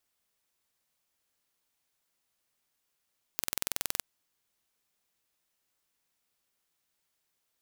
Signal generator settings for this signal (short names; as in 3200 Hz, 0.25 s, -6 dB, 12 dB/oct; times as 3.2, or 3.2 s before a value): pulse train 21.4/s, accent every 0, -3 dBFS 0.62 s